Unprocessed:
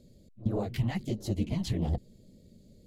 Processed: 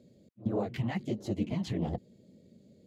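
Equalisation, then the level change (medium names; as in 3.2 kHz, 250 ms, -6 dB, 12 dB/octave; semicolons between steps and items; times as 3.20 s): Bessel high-pass 190 Hz, order 2; tone controls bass +1 dB, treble -14 dB; peaking EQ 6.8 kHz +5.5 dB 0.6 oct; +1.5 dB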